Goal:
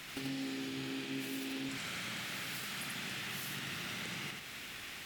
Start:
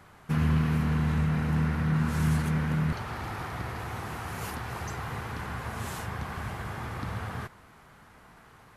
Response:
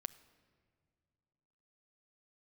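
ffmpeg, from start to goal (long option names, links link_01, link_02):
-filter_complex "[0:a]tiltshelf=frequency=1100:gain=-7.5,acompressor=threshold=-46dB:ratio=12,asplit=2[link_01][link_02];[1:a]atrim=start_sample=2205,asetrate=23373,aresample=44100,adelay=148[link_03];[link_02][link_03]afir=irnorm=-1:irlink=0,volume=-3dB[link_04];[link_01][link_04]amix=inputs=2:normalize=0,aresample=22050,aresample=44100,asetrate=76440,aresample=44100,volume=6dB"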